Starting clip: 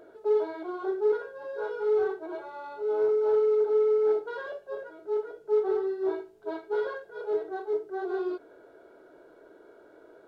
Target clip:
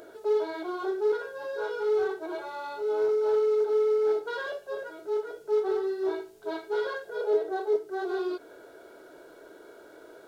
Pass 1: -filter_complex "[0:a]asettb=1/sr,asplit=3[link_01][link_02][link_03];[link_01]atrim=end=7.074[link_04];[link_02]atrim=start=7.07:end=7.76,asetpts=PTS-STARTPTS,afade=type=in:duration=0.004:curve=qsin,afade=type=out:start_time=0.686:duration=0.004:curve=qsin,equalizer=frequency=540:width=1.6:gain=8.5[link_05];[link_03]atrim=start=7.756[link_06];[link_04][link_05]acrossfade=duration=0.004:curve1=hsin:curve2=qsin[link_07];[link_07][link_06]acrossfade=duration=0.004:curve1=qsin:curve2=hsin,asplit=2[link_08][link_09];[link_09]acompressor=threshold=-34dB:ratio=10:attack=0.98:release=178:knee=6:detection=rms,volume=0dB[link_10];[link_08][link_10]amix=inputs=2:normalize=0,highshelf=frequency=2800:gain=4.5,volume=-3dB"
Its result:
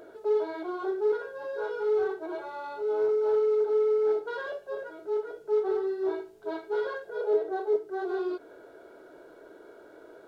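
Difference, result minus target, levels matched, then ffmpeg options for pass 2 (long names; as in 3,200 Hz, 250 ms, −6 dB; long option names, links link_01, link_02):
4,000 Hz band −5.5 dB
-filter_complex "[0:a]asettb=1/sr,asplit=3[link_01][link_02][link_03];[link_01]atrim=end=7.074[link_04];[link_02]atrim=start=7.07:end=7.76,asetpts=PTS-STARTPTS,afade=type=in:duration=0.004:curve=qsin,afade=type=out:start_time=0.686:duration=0.004:curve=qsin,equalizer=frequency=540:width=1.6:gain=8.5[link_05];[link_03]atrim=start=7.756[link_06];[link_04][link_05]acrossfade=duration=0.004:curve1=hsin:curve2=qsin[link_07];[link_07][link_06]acrossfade=duration=0.004:curve1=qsin:curve2=hsin,asplit=2[link_08][link_09];[link_09]acompressor=threshold=-34dB:ratio=10:attack=0.98:release=178:knee=6:detection=rms,volume=0dB[link_10];[link_08][link_10]amix=inputs=2:normalize=0,highshelf=frequency=2800:gain=14,volume=-3dB"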